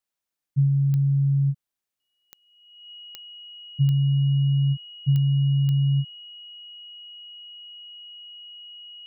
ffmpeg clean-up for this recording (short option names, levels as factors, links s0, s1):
-af "adeclick=t=4,bandreject=f=2900:w=30"